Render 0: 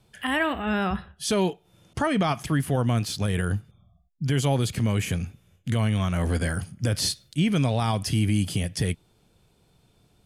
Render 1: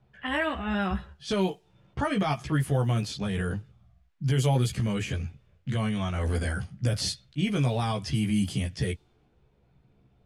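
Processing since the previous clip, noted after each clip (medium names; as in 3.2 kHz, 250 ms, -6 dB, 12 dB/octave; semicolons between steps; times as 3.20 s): chorus voices 4, 0.34 Hz, delay 15 ms, depth 1.4 ms; added noise blue -67 dBFS; level-controlled noise filter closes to 1.8 kHz, open at -21.5 dBFS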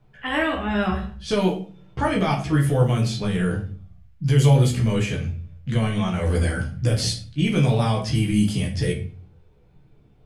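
simulated room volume 36 m³, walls mixed, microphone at 0.52 m; trim +3 dB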